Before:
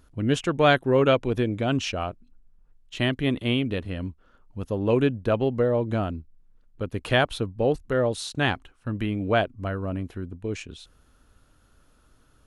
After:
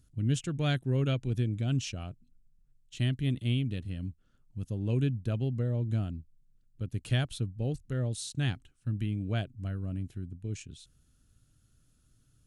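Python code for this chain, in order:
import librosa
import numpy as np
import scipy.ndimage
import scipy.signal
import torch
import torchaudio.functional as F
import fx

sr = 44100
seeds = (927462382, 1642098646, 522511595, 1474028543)

y = fx.graphic_eq_10(x, sr, hz=(125, 500, 1000, 2000, 8000), db=(10, -7, -12, -3, 8))
y = F.gain(torch.from_numpy(y), -8.5).numpy()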